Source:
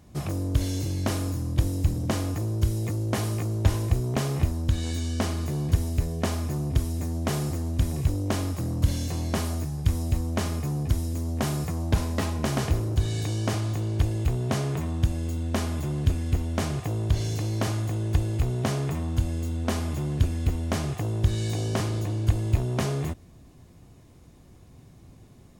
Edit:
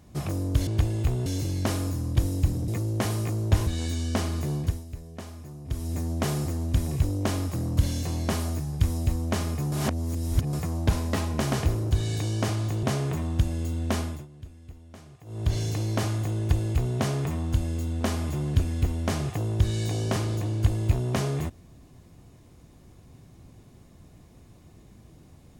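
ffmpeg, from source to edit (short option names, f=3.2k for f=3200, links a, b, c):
-filter_complex "[0:a]asplit=12[a][b][c][d][e][f][g][h][i][j][k][l];[a]atrim=end=0.672[m];[b]atrim=start=13.878:end=14.472[n];[c]atrim=start=0.668:end=2.092[o];[d]atrim=start=2.808:end=3.802[p];[e]atrim=start=4.718:end=5.89,asetpts=PTS-STARTPTS,afade=t=out:st=0.862:d=0.31:silence=0.223872[q];[f]atrim=start=5.89:end=6.69,asetpts=PTS-STARTPTS,volume=-13dB[r];[g]atrim=start=6.69:end=10.772,asetpts=PTS-STARTPTS,afade=t=in:d=0.31:silence=0.223872[s];[h]atrim=start=10.768:end=11.582,asetpts=PTS-STARTPTS,areverse[t];[i]atrim=start=11.578:end=13.882[u];[j]atrim=start=14.468:end=15.91,asetpts=PTS-STARTPTS,afade=t=out:st=1.162:d=0.28:silence=0.1[v];[k]atrim=start=15.91:end=16.89,asetpts=PTS-STARTPTS,volume=-20dB[w];[l]atrim=start=16.89,asetpts=PTS-STARTPTS,afade=t=in:d=0.28:silence=0.1[x];[m][n]acrossfade=d=0.004:c1=hsin:c2=hsin[y];[y][o]acrossfade=d=0.004:c1=hsin:c2=hsin[z];[z][p]acrossfade=d=0.004:c1=hsin:c2=hsin[aa];[q][r][s]concat=n=3:v=0:a=1[ab];[aa][ab]acrossfade=d=0.004:c1=hsin:c2=hsin[ac];[ac][t]acrossfade=d=0.004:c1=hsin:c2=hsin[ad];[ad][u]acrossfade=d=0.004:c1=hsin:c2=hsin[ae];[v][w][x]concat=n=3:v=0:a=1[af];[ae][af]acrossfade=d=0.004:c1=hsin:c2=hsin"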